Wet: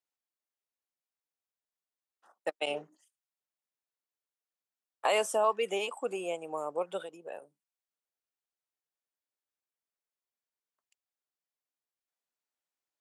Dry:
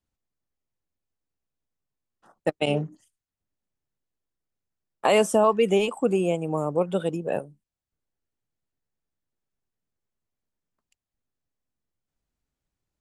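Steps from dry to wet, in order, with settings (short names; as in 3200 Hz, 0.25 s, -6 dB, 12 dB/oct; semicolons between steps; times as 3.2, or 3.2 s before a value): 7.01–7.42 compressor 5:1, threshold -30 dBFS, peak gain reduction 9 dB; HPF 580 Hz 12 dB/oct; gain -5 dB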